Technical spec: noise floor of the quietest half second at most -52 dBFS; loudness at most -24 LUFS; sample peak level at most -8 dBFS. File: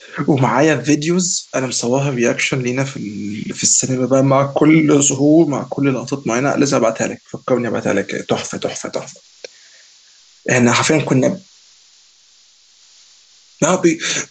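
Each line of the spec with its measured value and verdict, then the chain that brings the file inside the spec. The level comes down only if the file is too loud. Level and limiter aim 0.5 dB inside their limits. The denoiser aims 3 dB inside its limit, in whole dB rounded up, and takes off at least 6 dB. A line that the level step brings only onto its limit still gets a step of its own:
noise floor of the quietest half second -50 dBFS: fail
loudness -16.0 LUFS: fail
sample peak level -2.0 dBFS: fail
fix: trim -8.5 dB

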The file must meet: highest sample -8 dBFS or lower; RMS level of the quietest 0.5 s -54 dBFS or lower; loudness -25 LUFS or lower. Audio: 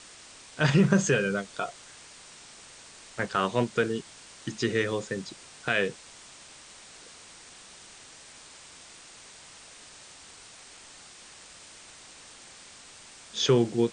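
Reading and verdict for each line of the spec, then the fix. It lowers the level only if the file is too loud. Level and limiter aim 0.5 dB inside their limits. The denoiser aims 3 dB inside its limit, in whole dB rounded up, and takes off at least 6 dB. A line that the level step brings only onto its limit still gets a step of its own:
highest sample -7.0 dBFS: fail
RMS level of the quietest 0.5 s -50 dBFS: fail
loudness -27.5 LUFS: pass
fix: noise reduction 7 dB, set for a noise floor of -50 dBFS; peak limiter -8.5 dBFS

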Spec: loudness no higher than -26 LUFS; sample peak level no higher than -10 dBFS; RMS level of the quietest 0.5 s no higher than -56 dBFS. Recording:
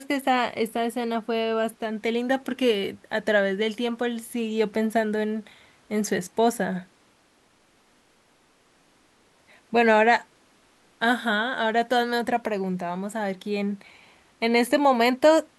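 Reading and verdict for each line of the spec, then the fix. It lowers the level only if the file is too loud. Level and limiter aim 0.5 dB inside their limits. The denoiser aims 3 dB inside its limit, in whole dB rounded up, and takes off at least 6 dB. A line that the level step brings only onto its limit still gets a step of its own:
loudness -24.5 LUFS: fail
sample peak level -7.5 dBFS: fail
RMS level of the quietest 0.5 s -62 dBFS: pass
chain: trim -2 dB; peak limiter -10.5 dBFS

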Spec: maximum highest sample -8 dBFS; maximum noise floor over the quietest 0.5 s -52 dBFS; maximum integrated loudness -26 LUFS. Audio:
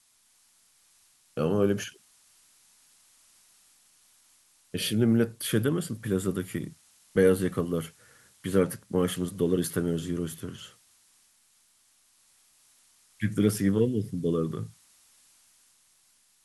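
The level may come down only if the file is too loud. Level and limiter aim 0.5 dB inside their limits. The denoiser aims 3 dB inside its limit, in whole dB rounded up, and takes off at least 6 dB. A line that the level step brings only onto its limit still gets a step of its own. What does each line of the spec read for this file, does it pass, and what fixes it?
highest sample -10.5 dBFS: pass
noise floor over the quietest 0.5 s -65 dBFS: pass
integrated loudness -28.0 LUFS: pass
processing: none needed

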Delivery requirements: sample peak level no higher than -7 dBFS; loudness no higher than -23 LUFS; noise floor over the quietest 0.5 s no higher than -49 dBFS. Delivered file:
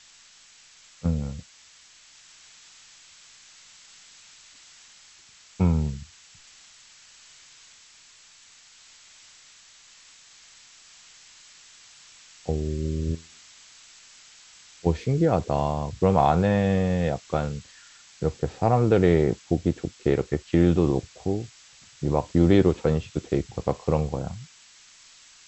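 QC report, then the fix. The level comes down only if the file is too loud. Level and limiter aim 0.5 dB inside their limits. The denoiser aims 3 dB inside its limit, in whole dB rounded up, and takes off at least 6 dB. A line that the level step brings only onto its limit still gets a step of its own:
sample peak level -6.0 dBFS: fail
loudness -24.5 LUFS: pass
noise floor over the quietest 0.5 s -53 dBFS: pass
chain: peak limiter -7.5 dBFS

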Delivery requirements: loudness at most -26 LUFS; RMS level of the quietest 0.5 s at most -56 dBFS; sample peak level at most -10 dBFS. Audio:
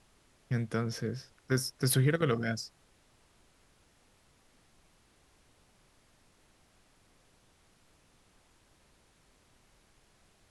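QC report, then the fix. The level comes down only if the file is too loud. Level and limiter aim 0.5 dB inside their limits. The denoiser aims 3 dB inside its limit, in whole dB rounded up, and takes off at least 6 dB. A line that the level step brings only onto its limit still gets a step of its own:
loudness -32.0 LUFS: pass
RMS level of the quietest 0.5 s -66 dBFS: pass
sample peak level -14.5 dBFS: pass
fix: none needed

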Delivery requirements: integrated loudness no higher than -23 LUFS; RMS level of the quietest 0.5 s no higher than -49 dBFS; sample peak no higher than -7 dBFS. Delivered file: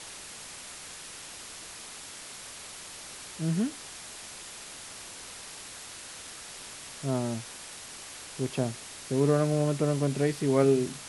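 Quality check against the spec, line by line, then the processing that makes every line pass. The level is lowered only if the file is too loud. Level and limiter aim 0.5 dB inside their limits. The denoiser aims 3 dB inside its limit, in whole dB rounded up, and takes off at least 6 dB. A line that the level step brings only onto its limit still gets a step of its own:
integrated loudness -32.5 LUFS: pass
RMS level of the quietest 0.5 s -44 dBFS: fail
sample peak -12.0 dBFS: pass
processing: noise reduction 8 dB, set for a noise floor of -44 dBFS

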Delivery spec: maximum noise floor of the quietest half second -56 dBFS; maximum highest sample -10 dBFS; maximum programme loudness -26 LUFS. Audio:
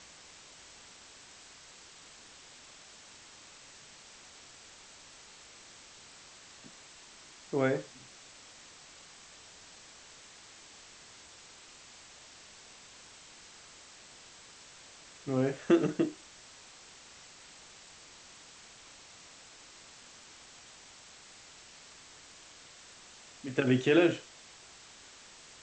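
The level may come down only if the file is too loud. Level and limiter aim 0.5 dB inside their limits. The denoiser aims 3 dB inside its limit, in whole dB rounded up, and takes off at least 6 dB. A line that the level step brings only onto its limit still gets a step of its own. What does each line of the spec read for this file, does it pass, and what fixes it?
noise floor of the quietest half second -54 dBFS: fail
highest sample -13.0 dBFS: pass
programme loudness -30.0 LUFS: pass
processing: noise reduction 6 dB, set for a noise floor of -54 dBFS

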